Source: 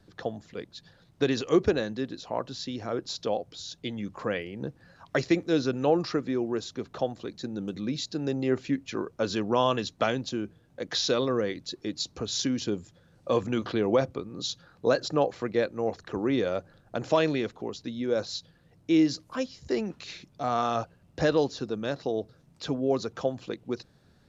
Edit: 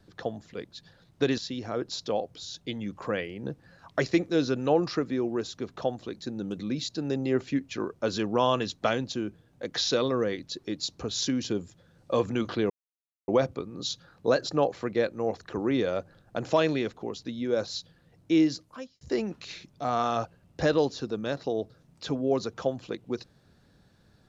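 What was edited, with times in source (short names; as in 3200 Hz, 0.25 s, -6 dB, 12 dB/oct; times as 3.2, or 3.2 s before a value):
1.38–2.55 cut
13.87 insert silence 0.58 s
18.98–19.6 fade out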